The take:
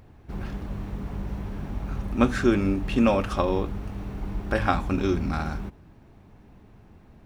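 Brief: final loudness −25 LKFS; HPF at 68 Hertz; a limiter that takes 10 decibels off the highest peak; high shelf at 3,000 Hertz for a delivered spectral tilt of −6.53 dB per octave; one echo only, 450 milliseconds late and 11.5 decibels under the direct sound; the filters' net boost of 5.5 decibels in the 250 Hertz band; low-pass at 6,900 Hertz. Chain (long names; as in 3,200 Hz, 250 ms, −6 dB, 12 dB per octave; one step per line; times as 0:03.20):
high-pass filter 68 Hz
low-pass filter 6,900 Hz
parametric band 250 Hz +6.5 dB
high-shelf EQ 3,000 Hz +4 dB
brickwall limiter −13.5 dBFS
single-tap delay 450 ms −11.5 dB
level +1.5 dB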